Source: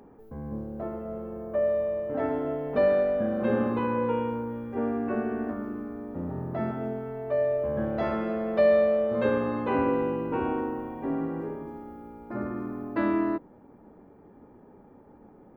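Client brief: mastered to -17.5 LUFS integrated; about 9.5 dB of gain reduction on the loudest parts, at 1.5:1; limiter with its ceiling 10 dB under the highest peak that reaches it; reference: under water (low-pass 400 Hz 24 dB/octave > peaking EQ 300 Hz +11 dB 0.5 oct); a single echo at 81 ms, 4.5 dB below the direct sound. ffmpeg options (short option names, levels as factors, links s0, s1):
-af "acompressor=threshold=0.00562:ratio=1.5,alimiter=level_in=2.24:limit=0.0631:level=0:latency=1,volume=0.447,lowpass=f=400:w=0.5412,lowpass=f=400:w=1.3066,equalizer=f=300:t=o:w=0.5:g=11,aecho=1:1:81:0.596,volume=7.5"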